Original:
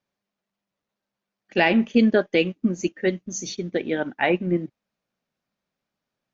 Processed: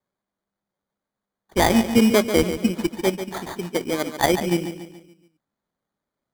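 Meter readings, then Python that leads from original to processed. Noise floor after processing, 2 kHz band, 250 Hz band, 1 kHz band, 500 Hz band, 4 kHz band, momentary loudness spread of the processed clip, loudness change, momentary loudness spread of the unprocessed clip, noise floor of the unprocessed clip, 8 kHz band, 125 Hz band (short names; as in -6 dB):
under -85 dBFS, -2.0 dB, +1.5 dB, +4.0 dB, +1.5 dB, +4.0 dB, 14 LU, +1.5 dB, 11 LU, under -85 dBFS, n/a, +2.0 dB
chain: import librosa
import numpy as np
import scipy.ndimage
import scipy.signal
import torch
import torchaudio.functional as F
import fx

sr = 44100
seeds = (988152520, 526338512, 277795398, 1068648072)

p1 = fx.cheby_harmonics(x, sr, harmonics=(7,), levels_db=(-29,), full_scale_db=-6.5)
p2 = fx.sample_hold(p1, sr, seeds[0], rate_hz=2700.0, jitter_pct=0)
p3 = fx.wow_flutter(p2, sr, seeds[1], rate_hz=2.1, depth_cents=29.0)
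p4 = p3 + fx.echo_feedback(p3, sr, ms=142, feedback_pct=45, wet_db=-10.0, dry=0)
y = p4 * 10.0 ** (1.5 / 20.0)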